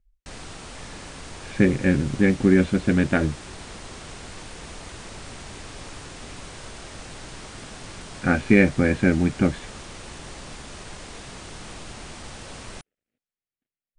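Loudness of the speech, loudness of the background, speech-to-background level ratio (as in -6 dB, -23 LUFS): -21.0 LUFS, -39.0 LUFS, 18.0 dB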